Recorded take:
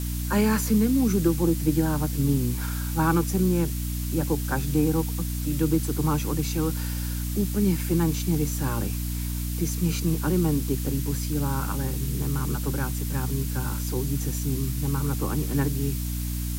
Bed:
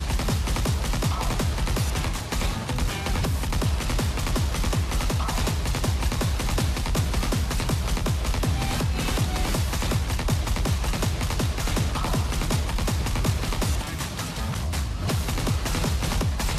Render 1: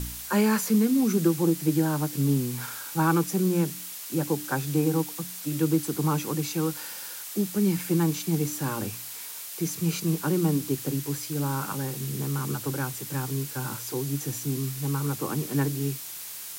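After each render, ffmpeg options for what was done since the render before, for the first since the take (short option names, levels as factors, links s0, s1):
-af "bandreject=f=60:t=h:w=4,bandreject=f=120:t=h:w=4,bandreject=f=180:t=h:w=4,bandreject=f=240:t=h:w=4,bandreject=f=300:t=h:w=4"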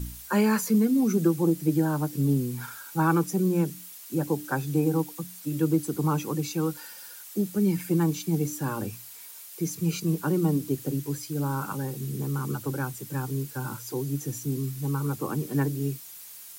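-af "afftdn=nr=9:nf=-39"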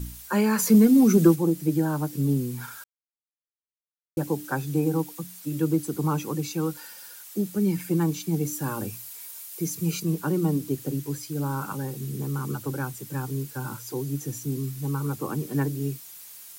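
-filter_complex "[0:a]asplit=3[s0][s1][s2];[s0]afade=t=out:st=0.58:d=0.02[s3];[s1]acontrast=57,afade=t=in:st=0.58:d=0.02,afade=t=out:st=1.34:d=0.02[s4];[s2]afade=t=in:st=1.34:d=0.02[s5];[s3][s4][s5]amix=inputs=3:normalize=0,asettb=1/sr,asplit=3[s6][s7][s8];[s6]atrim=end=8.464[s9];[s7]atrim=start=8.46:end=10.03,asetpts=PTS-STARTPTS,afade=t=in:d=0.004:c=qsin,afade=t=out:st=1.566:d=0.004:c=qsin,equalizer=f=13000:t=o:w=1.5:g=4.5[s10];[s8]atrim=start=10.026[s11];[s9][s10]acrossfade=d=0.004:c1=hsin:c2=qsin[s12];[s12][s11]acrossfade=d=0.004:c1=qsin:c2=hsin,asplit=3[s13][s14][s15];[s13]atrim=end=2.84,asetpts=PTS-STARTPTS,afade=t=out:st=2.836:d=0.004:c=hsin[s16];[s14]atrim=start=2.84:end=4.17,asetpts=PTS-STARTPTS,volume=0[s17];[s15]atrim=start=4.17,asetpts=PTS-STARTPTS,afade=t=in:d=0.004:c=hsin[s18];[s16][s17][s18]concat=n=3:v=0:a=1"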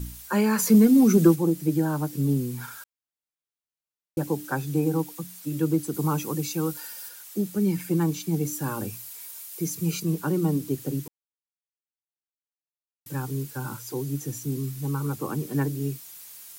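-filter_complex "[0:a]asettb=1/sr,asplit=3[s0][s1][s2];[s0]atrim=end=5.944[s3];[s1]atrim=start=5.94:end=7.09,asetpts=PTS-STARTPTS,afade=t=in:d=0.004:c=qsin,afade=t=out:st=1.146:d=0.004:c=qsin,highshelf=f=6400:g=6[s4];[s2]atrim=start=7.086[s5];[s3][s4]acrossfade=d=0.004:c1=hsin:c2=qsin[s6];[s6][s5]acrossfade=d=0.004:c1=qsin:c2=hsin,asplit=3[s7][s8][s9];[s7]atrim=end=11.08,asetpts=PTS-STARTPTS,afade=t=out:st=11.076:d=0.004:c=hsin[s10];[s8]atrim=start=11.08:end=13.06,asetpts=PTS-STARTPTS,volume=0[s11];[s9]atrim=start=13.06,asetpts=PTS-STARTPTS,afade=t=in:d=0.004:c=hsin[s12];[s10][s11][s12]concat=n=3:v=0:a=1"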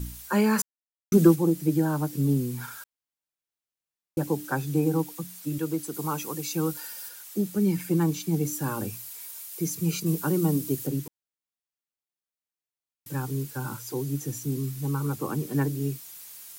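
-filter_complex "[0:a]asettb=1/sr,asplit=3[s0][s1][s2];[s0]atrim=end=5.584[s3];[s1]atrim=start=5.58:end=6.53,asetpts=PTS-STARTPTS,afade=t=in:d=0.004:c=qsin,afade=t=out:st=0.946:d=0.004:c=qsin,lowshelf=f=340:g=-10[s4];[s2]atrim=start=6.526[s5];[s3][s4]acrossfade=d=0.004:c1=hsin:c2=qsin[s6];[s6][s5]acrossfade=d=0.004:c1=qsin:c2=hsin,asettb=1/sr,asplit=3[s7][s8][s9];[s7]atrim=end=10.064[s10];[s8]atrim=start=10.06:end=10.87,asetpts=PTS-STARTPTS,afade=t=in:d=0.004:c=qsin,afade=t=out:st=0.806:d=0.004:c=qsin,highshelf=f=5800:g=7.5[s11];[s9]atrim=start=10.866[s12];[s10][s11]acrossfade=d=0.004:c1=hsin:c2=qsin[s13];[s13][s12]acrossfade=d=0.004:c1=qsin:c2=hsin,asplit=3[s14][s15][s16];[s14]atrim=end=0.62,asetpts=PTS-STARTPTS,afade=t=out:st=0.616:d=0.004:c=hsin[s17];[s15]atrim=start=0.62:end=1.12,asetpts=PTS-STARTPTS,volume=0[s18];[s16]atrim=start=1.12,asetpts=PTS-STARTPTS,afade=t=in:d=0.004:c=hsin[s19];[s17][s18][s19]concat=n=3:v=0:a=1"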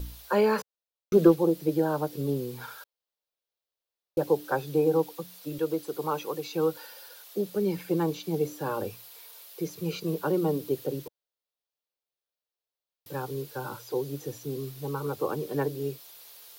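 -filter_complex "[0:a]equalizer=f=125:t=o:w=1:g=-7,equalizer=f=250:t=o:w=1:g=-9,equalizer=f=500:t=o:w=1:g=10,equalizer=f=2000:t=o:w=1:g=-4,equalizer=f=4000:t=o:w=1:g=6,equalizer=f=8000:t=o:w=1:g=-8,acrossover=split=3600[s0][s1];[s1]acompressor=threshold=0.00562:ratio=4:attack=1:release=60[s2];[s0][s2]amix=inputs=2:normalize=0"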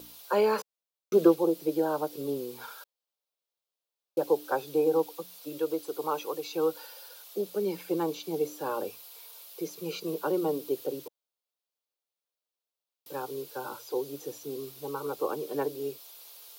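-af "highpass=310,equalizer=f=1800:t=o:w=0.47:g=-6"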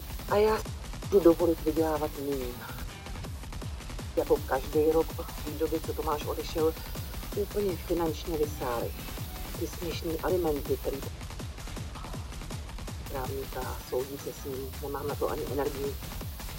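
-filter_complex "[1:a]volume=0.2[s0];[0:a][s0]amix=inputs=2:normalize=0"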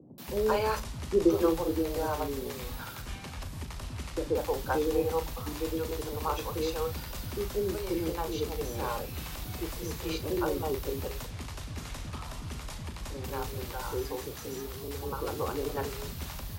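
-filter_complex "[0:a]asplit=2[s0][s1];[s1]adelay=37,volume=0.335[s2];[s0][s2]amix=inputs=2:normalize=0,acrossover=split=150|480[s3][s4][s5];[s5]adelay=180[s6];[s3]adelay=270[s7];[s7][s4][s6]amix=inputs=3:normalize=0"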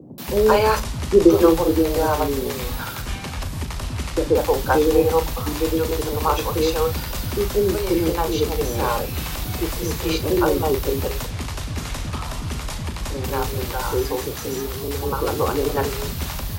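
-af "volume=3.76,alimiter=limit=0.794:level=0:latency=1"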